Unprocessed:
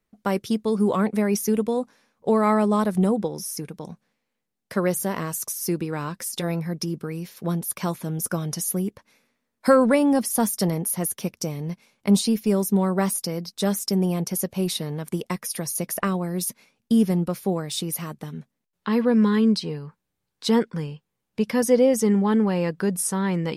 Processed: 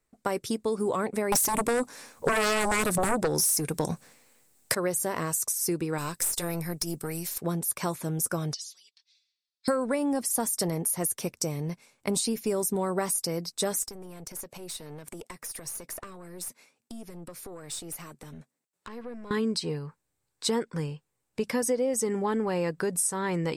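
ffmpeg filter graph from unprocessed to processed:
-filter_complex "[0:a]asettb=1/sr,asplit=3[s0][s1][s2];[s0]atrim=end=1.324[s3];[s1]atrim=start=1.32:end=4.75,asetpts=PTS-STARTPTS,afade=t=in:d=0.004:c=qsin,afade=t=out:st=3.426:d=0.004:c=qsin,highshelf=f=6400:g=9,aeval=exprs='0.355*sin(PI/2*3.98*val(0)/0.355)':c=same[s4];[s2]atrim=start=4.746[s5];[s3][s4]acrossfade=d=0.004:c1=hsin:c2=qsin[s6];[s6][s5]acrossfade=d=0.004:c1=qsin:c2=hsin,asettb=1/sr,asplit=3[s7][s8][s9];[s7]atrim=end=5.984[s10];[s8]atrim=start=5.98:end=7.38,asetpts=PTS-STARTPTS,afade=t=in:d=0.004:c=qsin,afade=t=out:st=1.396:d=0.004:c=qsin,aemphasis=mode=production:type=75kf,acompressor=threshold=0.0794:ratio=3:attack=3.2:release=140:knee=1:detection=peak,aeval=exprs='(tanh(11.2*val(0)+0.45)-tanh(0.45))/11.2':c=same[s11];[s9]atrim=start=7.376[s12];[s10][s11]acrossfade=d=0.004:c1=hsin:c2=qsin[s13];[s13][s12]acrossfade=d=0.004:c1=qsin:c2=hsin,asettb=1/sr,asplit=3[s14][s15][s16];[s14]atrim=end=8.534[s17];[s15]atrim=start=8.53:end=9.68,asetpts=PTS-STARTPTS,afade=t=in:d=0.004:c=qsin,afade=t=out:st=1.146:d=0.004:c=qsin,asuperpass=centerf=4100:order=4:qfactor=2.1,aecho=1:1:4.4:0.94,atrim=end_sample=50715[s18];[s16]atrim=start=9.676[s19];[s17][s18]acrossfade=d=0.004:c1=hsin:c2=qsin[s20];[s20][s19]acrossfade=d=0.004:c1=qsin:c2=hsin,asettb=1/sr,asplit=3[s21][s22][s23];[s21]atrim=end=13.824[s24];[s22]atrim=start=13.82:end=19.31,asetpts=PTS-STARTPTS,afade=t=in:d=0.004:c=qsin,afade=t=out:st=5.486:d=0.004:c=qsin,highpass=170,acompressor=threshold=0.02:ratio=4:attack=3.2:release=140:knee=1:detection=peak,aeval=exprs='(tanh(35.5*val(0)+0.45)-tanh(0.45))/35.5':c=same[s25];[s23]atrim=start=19.306[s26];[s24][s25]acrossfade=d=0.004:c1=hsin:c2=qsin[s27];[s27][s26]acrossfade=d=0.004:c1=qsin:c2=hsin,equalizer=f=200:t=o:w=0.33:g=-11,equalizer=f=3150:t=o:w=0.33:g=-4,equalizer=f=8000:t=o:w=0.33:g=10,acompressor=threshold=0.0631:ratio=6"

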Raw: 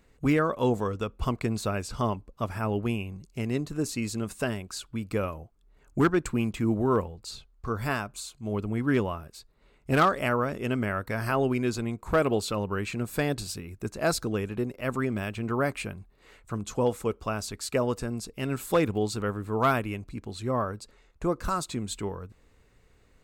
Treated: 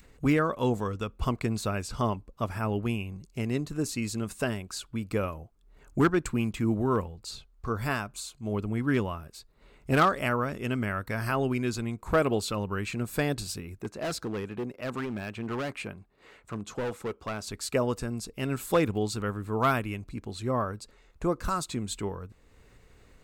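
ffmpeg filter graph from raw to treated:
-filter_complex "[0:a]asettb=1/sr,asplit=3[s0][s1][s2];[s0]atrim=end=13.814[s3];[s1]atrim=start=13.81:end=17.47,asetpts=PTS-STARTPTS,afade=t=in:d=0.004:c=qsin,afade=t=out:st=3.656:d=0.004:c=qsin,highpass=f=170:p=1,highshelf=f=5100:g=-9,asoftclip=type=hard:threshold=0.0398[s4];[s2]atrim=start=17.466[s5];[s3][s4]acrossfade=d=0.004:c1=hsin:c2=qsin[s6];[s6][s5]acrossfade=d=0.004:c1=qsin:c2=hsin,adynamicequalizer=threshold=0.0126:dfrequency=530:dqfactor=0.77:tfrequency=530:tqfactor=0.77:attack=5:release=100:ratio=0.375:range=2.5:mode=cutabove:tftype=bell,acompressor=mode=upward:threshold=0.00398:ratio=2.5"

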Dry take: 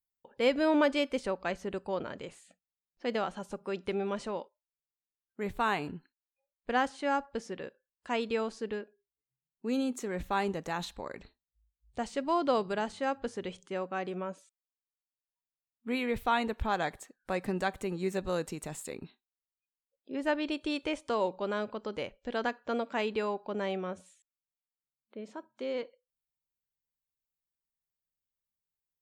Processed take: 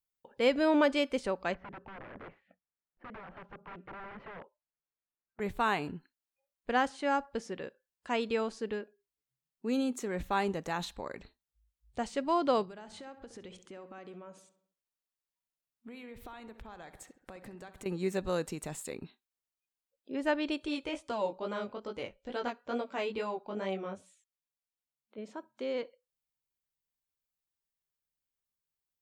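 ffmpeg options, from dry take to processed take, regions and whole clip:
-filter_complex "[0:a]asettb=1/sr,asplit=3[s0][s1][s2];[s0]atrim=end=1.544[s3];[s1]atrim=start=1.54:end=5.4,asetpts=PTS-STARTPTS,afade=t=in:d=0.004:c=qsin,afade=t=out:st=3.856:d=0.004:c=qsin,acompressor=threshold=0.0141:ratio=12:attack=3.2:release=140:knee=1:detection=peak,aeval=exprs='(mod(89.1*val(0)+1,2)-1)/89.1':c=same,lowpass=f=2100:w=0.5412,lowpass=f=2100:w=1.3066[s4];[s2]atrim=start=5.396[s5];[s3][s4]acrossfade=d=0.004:c1=hsin:c2=qsin[s6];[s6][s5]acrossfade=d=0.004:c1=qsin:c2=hsin,asettb=1/sr,asplit=3[s7][s8][s9];[s7]atrim=end=12.644[s10];[s8]atrim=start=12.64:end=17.86,asetpts=PTS-STARTPTS,afade=t=in:d=0.004:c=qsin,afade=t=out:st=5.216:d=0.004:c=qsin,acompressor=threshold=0.00631:ratio=10:attack=3.2:release=140:knee=1:detection=peak,asplit=2[s11][s12];[s12]adelay=67,lowpass=f=2700:p=1,volume=0.251,asplit=2[s13][s14];[s14]adelay=67,lowpass=f=2700:p=1,volume=0.54,asplit=2[s15][s16];[s16]adelay=67,lowpass=f=2700:p=1,volume=0.54,asplit=2[s17][s18];[s18]adelay=67,lowpass=f=2700:p=1,volume=0.54,asplit=2[s19][s20];[s20]adelay=67,lowpass=f=2700:p=1,volume=0.54,asplit=2[s21][s22];[s22]adelay=67,lowpass=f=2700:p=1,volume=0.54[s23];[s11][s13][s15][s17][s19][s21][s23]amix=inputs=7:normalize=0,atrim=end_sample=230202[s24];[s9]atrim=start=17.856[s25];[s10][s24]acrossfade=d=0.004:c1=hsin:c2=qsin[s26];[s26][s25]acrossfade=d=0.004:c1=qsin:c2=hsin,asettb=1/sr,asplit=3[s27][s28][s29];[s27]atrim=end=20.664[s30];[s28]atrim=start=20.66:end=25.18,asetpts=PTS-STARTPTS,afade=t=in:d=0.004:c=qsin,afade=t=out:st=4.516:d=0.004:c=qsin,bandreject=f=1700:w=19,flanger=delay=15.5:depth=5.3:speed=2.3[s31];[s29]atrim=start=25.176[s32];[s30][s31]acrossfade=d=0.004:c1=hsin:c2=qsin[s33];[s33][s32]acrossfade=d=0.004:c1=qsin:c2=hsin"

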